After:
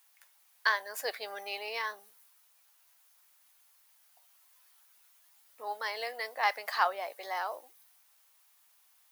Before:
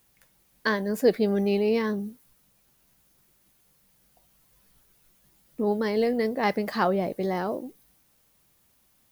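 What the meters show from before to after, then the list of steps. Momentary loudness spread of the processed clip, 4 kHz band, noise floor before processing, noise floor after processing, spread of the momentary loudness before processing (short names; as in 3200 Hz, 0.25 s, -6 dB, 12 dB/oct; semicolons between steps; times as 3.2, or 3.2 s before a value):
11 LU, 0.0 dB, -66 dBFS, -66 dBFS, 10 LU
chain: HPF 780 Hz 24 dB/oct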